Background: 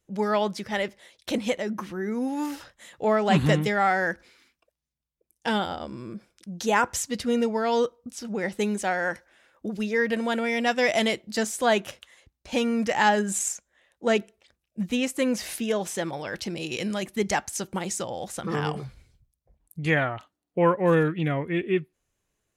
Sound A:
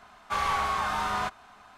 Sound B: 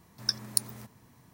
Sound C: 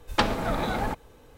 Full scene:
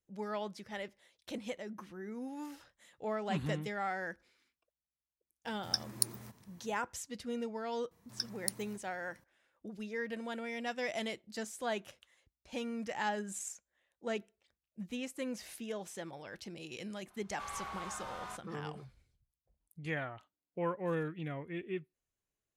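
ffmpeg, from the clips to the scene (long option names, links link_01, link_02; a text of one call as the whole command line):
ffmpeg -i bed.wav -i cue0.wav -i cue1.wav -filter_complex "[2:a]asplit=2[link_01][link_02];[0:a]volume=-14.5dB[link_03];[link_01]atrim=end=1.33,asetpts=PTS-STARTPTS,volume=-4.5dB,afade=type=in:duration=0.004:curve=hsin,afade=type=out:start_time=1.326:duration=0.004:curve=hsin,adelay=240345S[link_04];[link_02]atrim=end=1.33,asetpts=PTS-STARTPTS,volume=-9.5dB,afade=type=in:duration=0.004:curve=hsin,afade=type=out:start_time=1.326:duration=0.004:curve=hsin,adelay=7910[link_05];[1:a]atrim=end=1.77,asetpts=PTS-STARTPTS,volume=-16dB,afade=type=in:duration=0.004:curve=hsin,afade=type=out:start_time=1.766:duration=0.004:curve=hsin,adelay=17080[link_06];[link_03][link_04][link_05][link_06]amix=inputs=4:normalize=0" out.wav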